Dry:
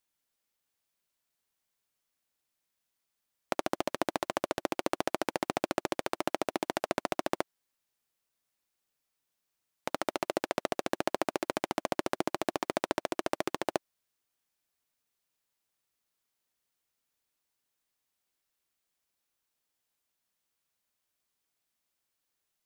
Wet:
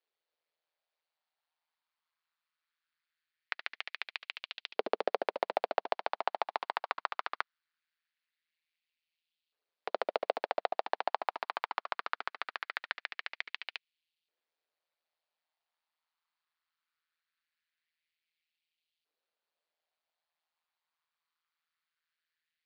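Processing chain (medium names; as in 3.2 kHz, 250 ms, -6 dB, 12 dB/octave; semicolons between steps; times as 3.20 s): Chebyshev band-pass 110–4500 Hz, order 4; ring modulator 81 Hz; LFO high-pass saw up 0.21 Hz 430–3100 Hz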